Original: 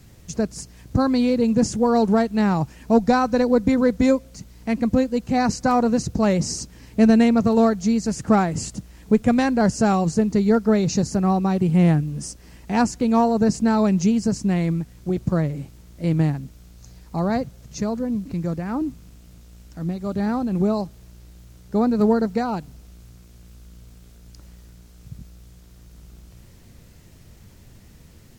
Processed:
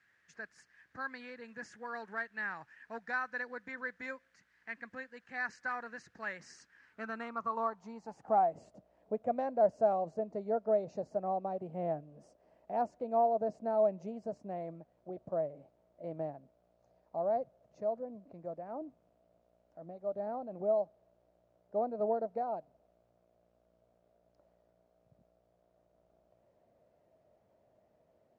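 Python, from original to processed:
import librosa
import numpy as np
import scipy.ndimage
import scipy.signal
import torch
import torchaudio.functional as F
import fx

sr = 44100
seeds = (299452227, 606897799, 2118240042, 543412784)

y = fx.filter_sweep_bandpass(x, sr, from_hz=1700.0, to_hz=630.0, start_s=6.64, end_s=8.66, q=7.3)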